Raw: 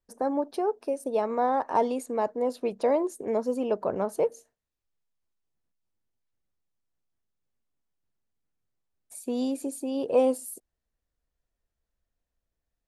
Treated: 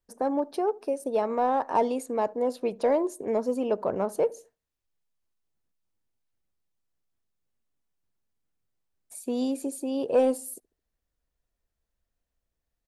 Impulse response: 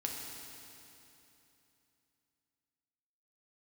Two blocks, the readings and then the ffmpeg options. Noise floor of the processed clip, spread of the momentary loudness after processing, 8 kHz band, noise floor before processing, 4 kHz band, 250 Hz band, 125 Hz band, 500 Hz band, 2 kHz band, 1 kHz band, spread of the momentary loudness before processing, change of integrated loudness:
-84 dBFS, 7 LU, +0.5 dB, -85 dBFS, +0.5 dB, +0.5 dB, +0.5 dB, +0.5 dB, +0.5 dB, +0.5 dB, 8 LU, +0.5 dB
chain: -filter_complex "[0:a]asplit=2[a][b];[b]volume=19dB,asoftclip=hard,volume=-19dB,volume=-9dB[c];[a][c]amix=inputs=2:normalize=0,asplit=2[d][e];[e]adelay=72,lowpass=f=900:p=1,volume=-22.5dB,asplit=2[f][g];[g]adelay=72,lowpass=f=900:p=1,volume=0.41,asplit=2[h][i];[i]adelay=72,lowpass=f=900:p=1,volume=0.41[j];[d][f][h][j]amix=inputs=4:normalize=0,volume=-2dB"

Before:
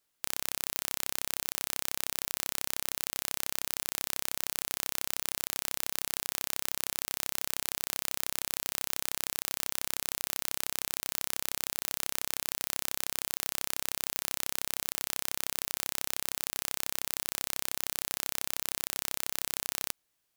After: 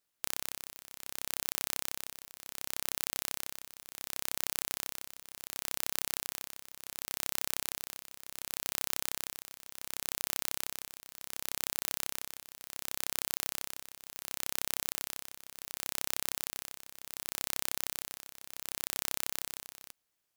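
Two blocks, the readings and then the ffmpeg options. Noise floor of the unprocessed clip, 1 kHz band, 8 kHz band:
-79 dBFS, -4.0 dB, -4.0 dB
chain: -af "tremolo=f=230:d=0.857"

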